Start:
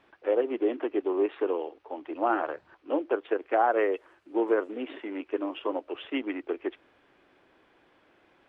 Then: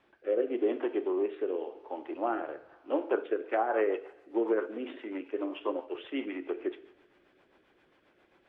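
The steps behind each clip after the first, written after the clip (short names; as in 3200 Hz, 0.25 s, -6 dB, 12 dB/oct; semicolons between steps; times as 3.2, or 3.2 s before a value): two-slope reverb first 0.61 s, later 1.9 s, DRR 8 dB; treble ducked by the level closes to 2800 Hz, closed at -18 dBFS; rotary speaker horn 0.9 Hz, later 7.5 Hz, at 3.12; gain -1.5 dB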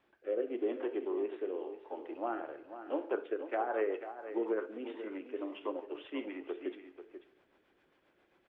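echo 0.489 s -11 dB; gain -5.5 dB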